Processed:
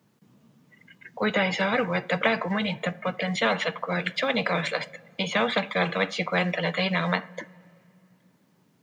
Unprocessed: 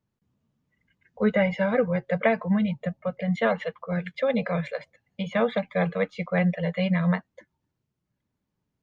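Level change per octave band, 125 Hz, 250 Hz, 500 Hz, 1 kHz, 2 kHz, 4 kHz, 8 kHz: -4.0 dB, -4.0 dB, -2.0 dB, +4.0 dB, +5.5 dB, +11.5 dB, no reading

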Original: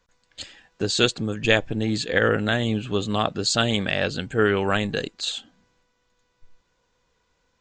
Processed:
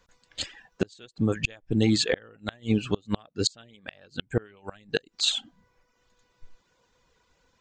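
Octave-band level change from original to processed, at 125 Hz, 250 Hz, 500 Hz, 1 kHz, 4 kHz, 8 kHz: -4.0 dB, -2.5 dB, -8.0 dB, -14.0 dB, -4.0 dB, -3.5 dB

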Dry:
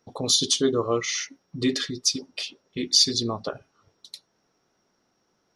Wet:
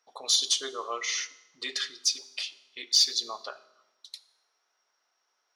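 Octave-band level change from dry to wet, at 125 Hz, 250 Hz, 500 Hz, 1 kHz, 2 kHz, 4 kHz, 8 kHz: under -35 dB, -24.5 dB, -14.5 dB, -3.5 dB, -1.5 dB, -2.5 dB, -3.0 dB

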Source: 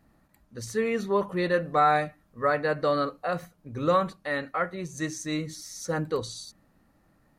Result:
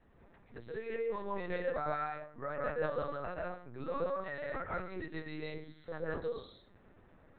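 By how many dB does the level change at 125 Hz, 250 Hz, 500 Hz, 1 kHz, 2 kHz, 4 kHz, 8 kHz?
-12.0 dB, -13.5 dB, -9.5 dB, -13.0 dB, -11.0 dB, -16.0 dB, under -40 dB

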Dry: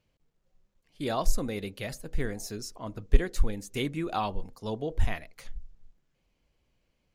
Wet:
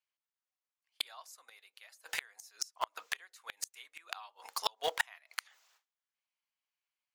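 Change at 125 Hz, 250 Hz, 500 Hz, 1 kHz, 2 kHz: under -35 dB, -33.0 dB, -12.0 dB, -5.0 dB, 0.0 dB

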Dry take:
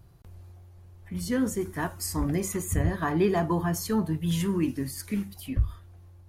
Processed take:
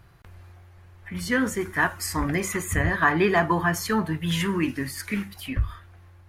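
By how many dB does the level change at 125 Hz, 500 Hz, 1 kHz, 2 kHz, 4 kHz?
+0.5 dB, +2.5 dB, +7.5 dB, +13.5 dB, +6.5 dB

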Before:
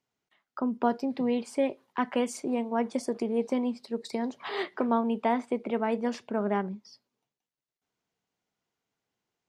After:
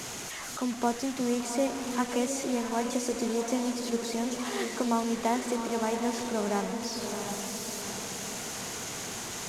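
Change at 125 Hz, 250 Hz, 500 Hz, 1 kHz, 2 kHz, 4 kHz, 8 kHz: no reading, -0.5 dB, -0.5 dB, 0.0 dB, +3.0 dB, +8.5 dB, +15.5 dB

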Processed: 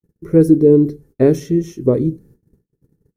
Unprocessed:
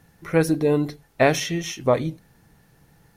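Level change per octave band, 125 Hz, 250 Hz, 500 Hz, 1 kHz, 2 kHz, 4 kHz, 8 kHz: +7.5 dB, +10.5 dB, +7.0 dB, -11.0 dB, -13.0 dB, under -10 dB, -8.0 dB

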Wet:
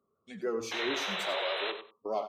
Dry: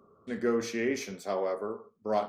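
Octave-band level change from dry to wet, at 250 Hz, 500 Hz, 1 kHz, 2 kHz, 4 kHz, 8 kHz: -7.5 dB, -4.0 dB, -1.0 dB, +4.0 dB, +12.0 dB, -1.5 dB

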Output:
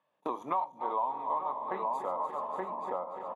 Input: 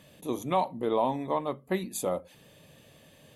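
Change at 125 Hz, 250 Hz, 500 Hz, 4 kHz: under -15 dB, -11.5 dB, -6.5 dB, under -15 dB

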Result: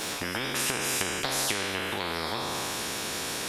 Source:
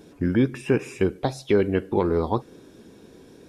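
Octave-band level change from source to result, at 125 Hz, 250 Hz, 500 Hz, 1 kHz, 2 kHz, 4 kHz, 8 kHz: -12.5 dB, -13.0 dB, -11.5 dB, -0.5 dB, +5.5 dB, +13.5 dB, no reading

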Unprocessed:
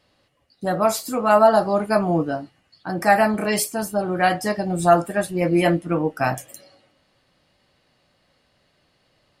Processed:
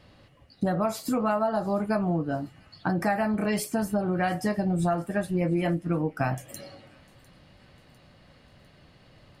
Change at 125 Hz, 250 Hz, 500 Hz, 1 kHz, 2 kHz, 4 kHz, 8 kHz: -1.5 dB, -3.0 dB, -9.0 dB, -10.0 dB, -9.0 dB, -9.5 dB, -10.5 dB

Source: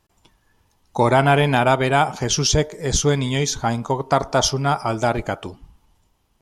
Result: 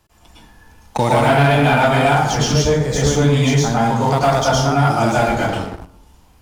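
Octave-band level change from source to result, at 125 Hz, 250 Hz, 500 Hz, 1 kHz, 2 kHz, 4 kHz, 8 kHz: +6.0 dB, +5.5 dB, +3.5 dB, +4.0 dB, +4.5 dB, +1.0 dB, -1.0 dB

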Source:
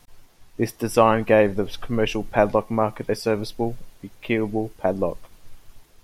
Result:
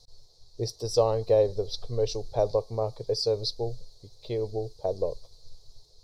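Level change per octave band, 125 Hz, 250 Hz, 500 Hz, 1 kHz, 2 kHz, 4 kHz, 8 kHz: -4.0 dB, -16.0 dB, -4.5 dB, -12.5 dB, under -25 dB, +1.0 dB, -2.5 dB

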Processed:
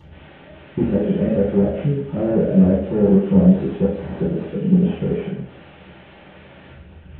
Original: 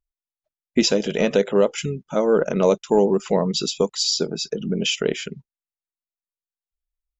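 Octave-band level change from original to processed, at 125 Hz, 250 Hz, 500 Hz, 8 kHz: +11.5 dB, +7.5 dB, -1.0 dB, no reading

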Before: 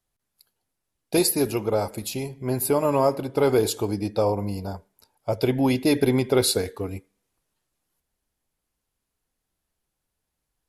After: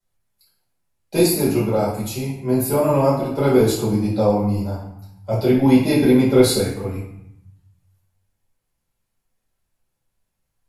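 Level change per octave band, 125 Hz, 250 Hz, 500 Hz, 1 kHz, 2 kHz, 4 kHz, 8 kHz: +7.5 dB, +7.5 dB, +4.5 dB, +3.5 dB, +3.0 dB, +1.5 dB, +1.0 dB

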